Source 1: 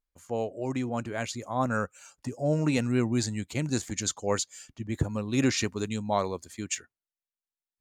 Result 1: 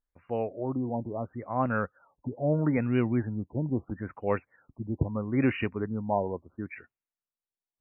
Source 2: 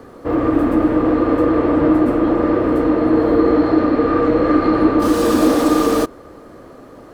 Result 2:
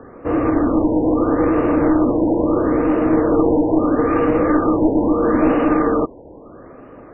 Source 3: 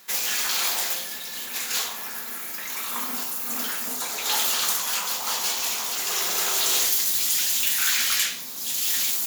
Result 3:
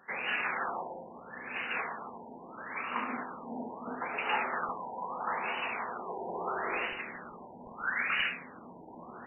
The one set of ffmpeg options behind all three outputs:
-af "aeval=exprs='clip(val(0),-1,0.2)':c=same,afftfilt=real='re*lt(b*sr/1024,980*pow(3000/980,0.5+0.5*sin(2*PI*0.76*pts/sr)))':imag='im*lt(b*sr/1024,980*pow(3000/980,0.5+0.5*sin(2*PI*0.76*pts/sr)))':win_size=1024:overlap=0.75"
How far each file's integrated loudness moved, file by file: -0.5, -1.5, -12.0 LU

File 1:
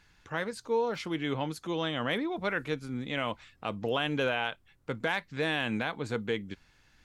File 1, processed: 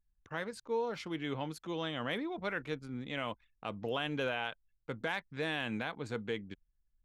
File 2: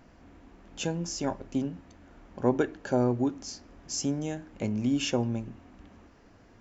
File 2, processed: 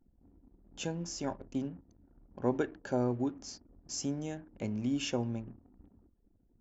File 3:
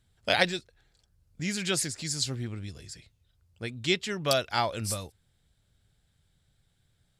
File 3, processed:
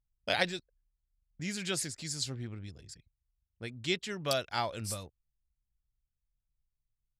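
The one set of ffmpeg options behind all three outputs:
-af "anlmdn=0.01,volume=-5.5dB"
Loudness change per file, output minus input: -5.5, -5.5, -5.5 LU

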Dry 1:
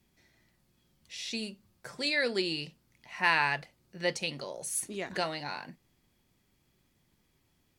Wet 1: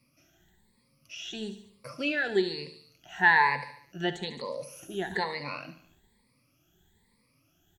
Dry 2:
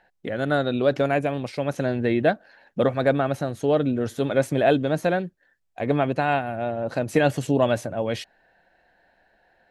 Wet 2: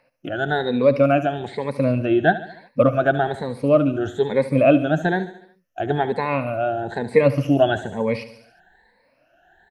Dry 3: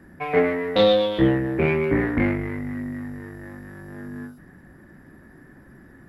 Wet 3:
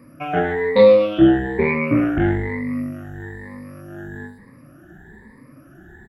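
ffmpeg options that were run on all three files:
-filter_complex "[0:a]afftfilt=real='re*pow(10,20/40*sin(2*PI*(0.94*log(max(b,1)*sr/1024/100)/log(2)-(1.1)*(pts-256)/sr)))':imag='im*pow(10,20/40*sin(2*PI*(0.94*log(max(b,1)*sr/1024/100)/log(2)-(1.1)*(pts-256)/sr)))':win_size=1024:overlap=0.75,aecho=1:1:72|144|216|288|360:0.188|0.0998|0.0529|0.028|0.0149,acrossover=split=3600[a][b];[b]acompressor=threshold=-50dB:ratio=4:attack=1:release=60[c];[a][c]amix=inputs=2:normalize=0,volume=-1dB"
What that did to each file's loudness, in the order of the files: +3.0, +3.5, +4.5 LU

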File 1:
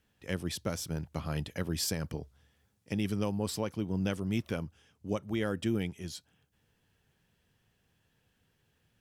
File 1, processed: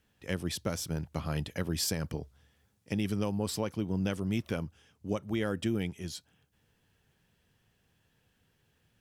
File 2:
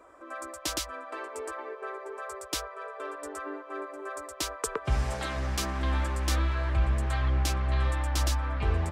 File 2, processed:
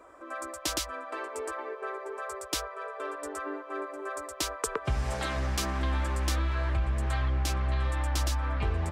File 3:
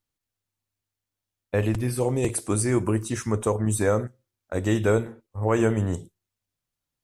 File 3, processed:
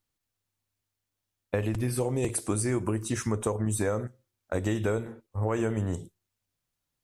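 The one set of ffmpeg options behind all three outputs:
-af "acompressor=threshold=-26dB:ratio=6,volume=1.5dB"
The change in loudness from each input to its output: +0.5, -0.5, -5.0 LU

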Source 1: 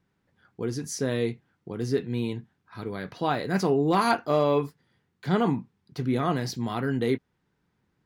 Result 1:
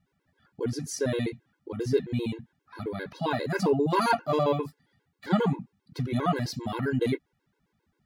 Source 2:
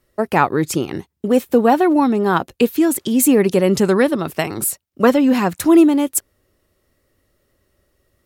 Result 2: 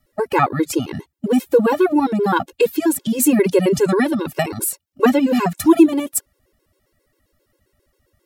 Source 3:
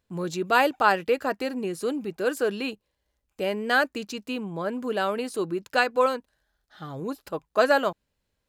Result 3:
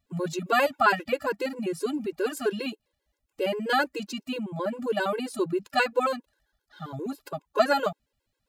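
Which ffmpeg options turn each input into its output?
-af "afftfilt=real='re*gt(sin(2*PI*7.5*pts/sr)*(1-2*mod(floor(b*sr/1024/280),2)),0)':imag='im*gt(sin(2*PI*7.5*pts/sr)*(1-2*mod(floor(b*sr/1024/280),2)),0)':win_size=1024:overlap=0.75,volume=2.5dB"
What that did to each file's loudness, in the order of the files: -1.5, -1.5, -1.5 LU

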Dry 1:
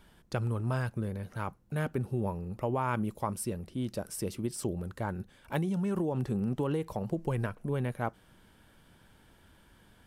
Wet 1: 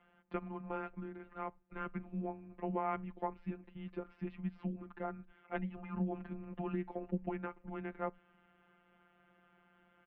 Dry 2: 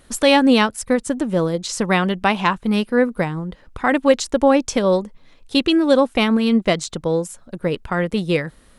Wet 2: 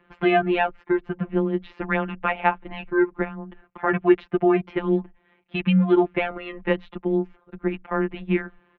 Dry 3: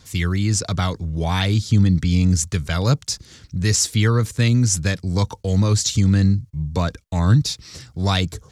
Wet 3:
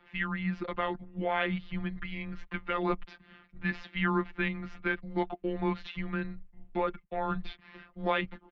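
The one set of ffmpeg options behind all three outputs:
-filter_complex "[0:a]afftfilt=real='hypot(re,im)*cos(PI*b)':imag='0':win_size=1024:overlap=0.75,acrossover=split=160[a][b];[a]adelay=90[c];[c][b]amix=inputs=2:normalize=0,highpass=f=240:t=q:w=0.5412,highpass=f=240:t=q:w=1.307,lowpass=f=2.8k:t=q:w=0.5176,lowpass=f=2.8k:t=q:w=0.7071,lowpass=f=2.8k:t=q:w=1.932,afreqshift=-160"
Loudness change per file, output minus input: -8.0, -5.0, -14.0 LU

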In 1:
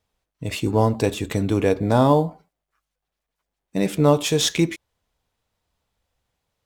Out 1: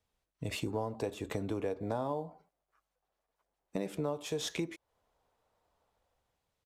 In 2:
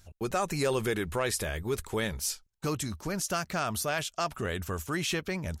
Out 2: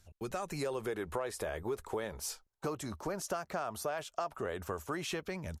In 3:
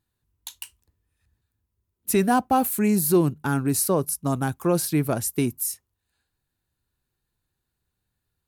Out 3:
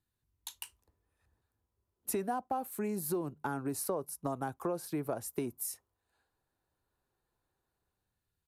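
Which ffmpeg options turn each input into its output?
-filter_complex "[0:a]acrossover=split=390|1200|3200[a][b][c][d];[b]dynaudnorm=f=130:g=11:m=13.5dB[e];[a][e][c][d]amix=inputs=4:normalize=0,aresample=32000,aresample=44100,acompressor=threshold=-27dB:ratio=5,volume=-6.5dB"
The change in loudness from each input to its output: -16.5, -7.0, -14.0 LU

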